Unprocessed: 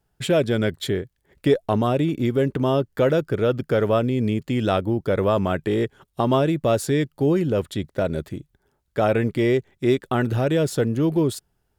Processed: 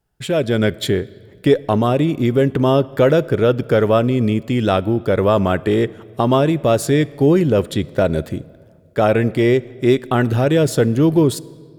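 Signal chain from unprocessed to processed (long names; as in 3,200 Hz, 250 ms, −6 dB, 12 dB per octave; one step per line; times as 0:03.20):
automatic gain control gain up to 9 dB
on a send: convolution reverb RT60 1.9 s, pre-delay 13 ms, DRR 20 dB
on the sum: level −1 dB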